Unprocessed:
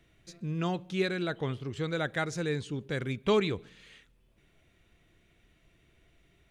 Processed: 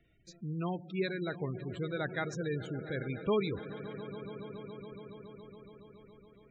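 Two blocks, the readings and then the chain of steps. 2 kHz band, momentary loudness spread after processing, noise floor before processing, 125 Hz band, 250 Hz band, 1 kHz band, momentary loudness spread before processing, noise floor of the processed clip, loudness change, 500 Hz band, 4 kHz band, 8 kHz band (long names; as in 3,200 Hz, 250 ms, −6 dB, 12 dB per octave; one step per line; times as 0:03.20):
−4.5 dB, 20 LU, −67 dBFS, −3.5 dB, −3.5 dB, −4.5 dB, 8 LU, −62 dBFS, −5.0 dB, −3.5 dB, −7.5 dB, −8.0 dB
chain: echo that builds up and dies away 140 ms, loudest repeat 5, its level −16.5 dB
gate on every frequency bin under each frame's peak −20 dB strong
level −4 dB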